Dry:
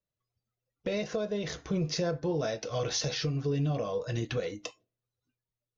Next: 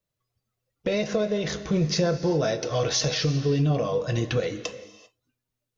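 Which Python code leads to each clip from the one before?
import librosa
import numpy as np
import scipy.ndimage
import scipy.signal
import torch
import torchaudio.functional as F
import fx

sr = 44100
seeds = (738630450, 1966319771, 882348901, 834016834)

y = fx.rev_gated(x, sr, seeds[0], gate_ms=420, shape='flat', drr_db=12.0)
y = y * 10.0 ** (6.5 / 20.0)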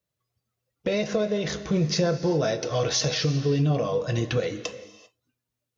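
y = scipy.signal.sosfilt(scipy.signal.butter(2, 44.0, 'highpass', fs=sr, output='sos'), x)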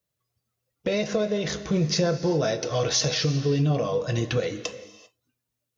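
y = fx.high_shelf(x, sr, hz=6200.0, db=4.0)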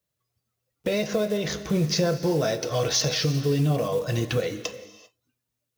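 y = fx.block_float(x, sr, bits=5)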